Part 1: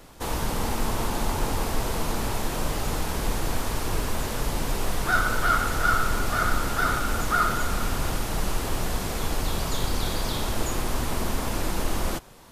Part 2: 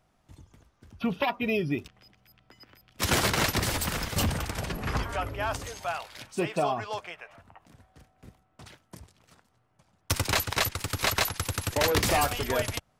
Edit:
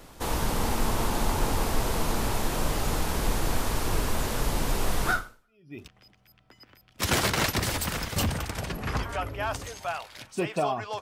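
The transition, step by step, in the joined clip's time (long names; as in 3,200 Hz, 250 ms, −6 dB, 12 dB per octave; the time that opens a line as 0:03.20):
part 1
0:05.47: continue with part 2 from 0:01.47, crossfade 0.72 s exponential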